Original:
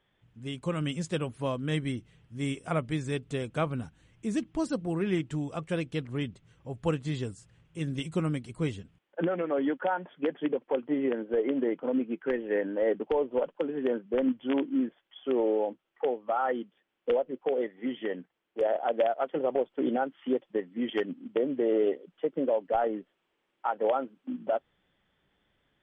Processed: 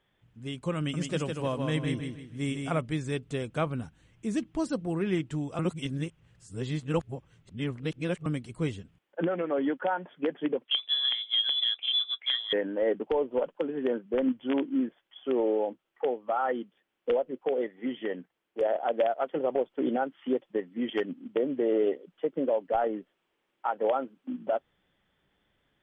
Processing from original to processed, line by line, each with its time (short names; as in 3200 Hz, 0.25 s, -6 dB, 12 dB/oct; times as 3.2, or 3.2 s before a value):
0.78–2.81 feedback echo 0.156 s, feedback 35%, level -5 dB
5.59–8.26 reverse
10.65–12.53 inverted band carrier 3700 Hz